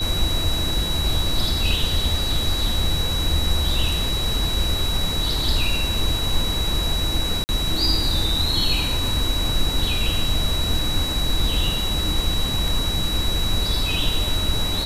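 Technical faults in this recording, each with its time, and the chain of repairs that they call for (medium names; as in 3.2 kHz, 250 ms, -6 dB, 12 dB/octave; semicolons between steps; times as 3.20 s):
whine 3.9 kHz -25 dBFS
7.44–7.49 s: dropout 49 ms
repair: band-stop 3.9 kHz, Q 30; interpolate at 7.44 s, 49 ms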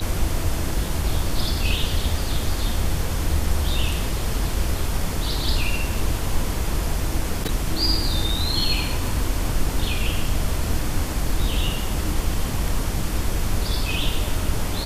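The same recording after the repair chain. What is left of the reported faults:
nothing left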